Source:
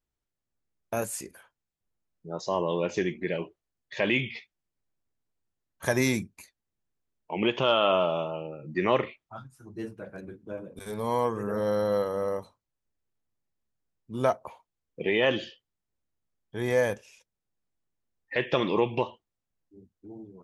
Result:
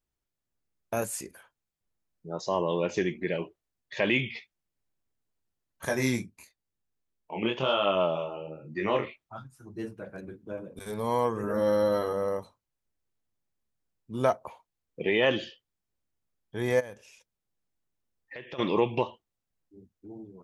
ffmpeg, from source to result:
-filter_complex "[0:a]asettb=1/sr,asplit=3[a][b][c];[a]atrim=end=5.854[d];[b]atrim=start=5.85:end=9.04,asetpts=PTS-STARTPTS,afade=t=in:d=0.004:c=qsin,afade=t=out:st=3.186:d=0.004:c=qsin,flanger=delay=20:depth=7.5:speed=1[e];[c]atrim=start=9.036[f];[d][e]acrossfade=d=0.004:c1=hsin:c2=qsin[g];[g][f]acrossfade=d=0.004:c1=qsin:c2=hsin,asettb=1/sr,asplit=3[h][i][j];[h]atrim=end=11.424[k];[i]atrim=start=11.42:end=12.13,asetpts=PTS-STARTPTS,afade=t=in:d=0.004:c=qsin,afade=t=out:st=0.706:d=0.004:c=qsin,asplit=2[l][m];[m]adelay=13,volume=-3dB[n];[l][n]amix=inputs=2:normalize=0,atrim=end_sample=31311[o];[j]atrim=start=12.126[p];[k][o]acrossfade=d=0.004:c1=hsin:c2=qsin[q];[q][p]acrossfade=d=0.004:c1=qsin:c2=hsin,asplit=3[r][s][t];[r]afade=t=out:st=16.79:d=0.02[u];[s]acompressor=threshold=-43dB:ratio=3:attack=3.2:release=140:knee=1:detection=peak,afade=t=in:st=16.79:d=0.02,afade=t=out:st=18.58:d=0.02[v];[t]afade=t=in:st=18.58:d=0.02[w];[u][v][w]amix=inputs=3:normalize=0"

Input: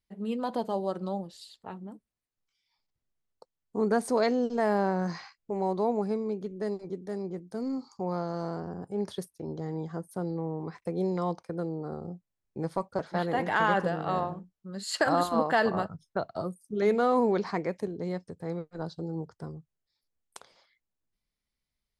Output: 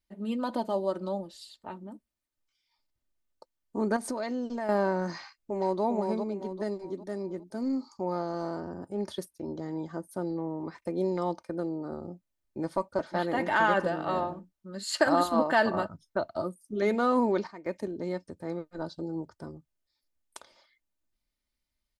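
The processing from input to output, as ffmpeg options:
-filter_complex "[0:a]asettb=1/sr,asplit=3[a][b][c];[a]atrim=end=3.964[d];[b]atrim=start=3.96:end=4.69,asetpts=PTS-STARTPTS,afade=t=in:d=0.004:c=qsin,afade=t=out:st=0.726:d=0.004:c=qsin,acompressor=threshold=-30dB:ratio=4:attack=3.2:release=140:knee=1:detection=peak[e];[c]atrim=start=4.686[f];[d][e]acrossfade=d=0.004:c1=hsin:c2=qsin[g];[g][f]acrossfade=d=0.004:c1=qsin:c2=hsin,asplit=2[h][i];[i]afade=t=in:st=5.21:d=0.01,afade=t=out:st=5.83:d=0.01,aecho=0:1:400|800|1200|1600|2000:0.562341|0.224937|0.0899746|0.0359898|0.0143959[j];[h][j]amix=inputs=2:normalize=0,asplit=3[k][l][m];[k]atrim=end=17.47,asetpts=PTS-STARTPTS,afade=t=out:st=17.09:d=0.38:c=log:silence=0.177828[n];[l]atrim=start=17.47:end=17.66,asetpts=PTS-STARTPTS,volume=-15dB[o];[m]atrim=start=17.66,asetpts=PTS-STARTPTS,afade=t=in:d=0.38:c=log:silence=0.177828[p];[n][o][p]concat=n=3:v=0:a=1,aecho=1:1:3.3:0.5"

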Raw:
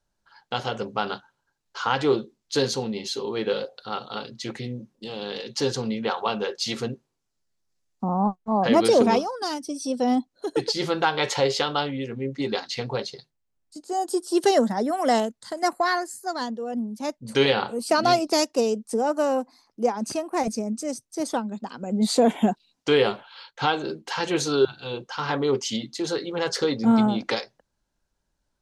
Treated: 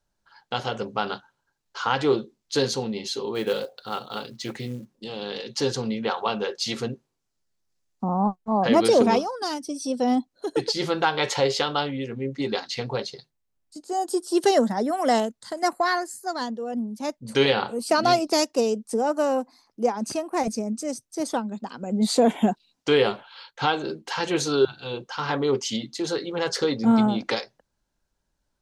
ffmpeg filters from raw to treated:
-filter_complex "[0:a]asplit=3[a][b][c];[a]afade=t=out:st=3.34:d=0.02[d];[b]acrusher=bits=6:mode=log:mix=0:aa=0.000001,afade=t=in:st=3.34:d=0.02,afade=t=out:st=4.95:d=0.02[e];[c]afade=t=in:st=4.95:d=0.02[f];[d][e][f]amix=inputs=3:normalize=0"

